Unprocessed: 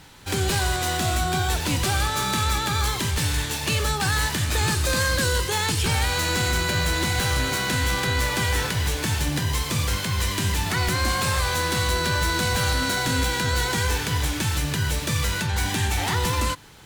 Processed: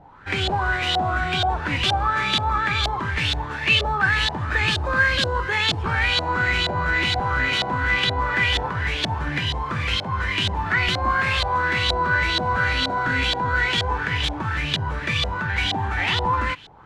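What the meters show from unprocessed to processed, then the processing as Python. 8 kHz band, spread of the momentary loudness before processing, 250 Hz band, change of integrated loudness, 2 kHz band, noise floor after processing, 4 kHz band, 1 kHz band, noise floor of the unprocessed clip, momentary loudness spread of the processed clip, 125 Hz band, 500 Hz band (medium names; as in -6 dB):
-14.0 dB, 2 LU, -2.0 dB, +1.5 dB, +5.0 dB, -30 dBFS, +2.5 dB, +4.5 dB, -29 dBFS, 5 LU, -2.5 dB, -0.5 dB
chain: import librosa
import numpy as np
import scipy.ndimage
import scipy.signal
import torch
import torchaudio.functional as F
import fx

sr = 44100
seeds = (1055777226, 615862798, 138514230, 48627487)

y = fx.filter_lfo_lowpass(x, sr, shape='saw_up', hz=2.1, low_hz=670.0, high_hz=3700.0, q=4.6)
y = fx.high_shelf(y, sr, hz=4700.0, db=10.5)
y = y * librosa.db_to_amplitude(-2.5)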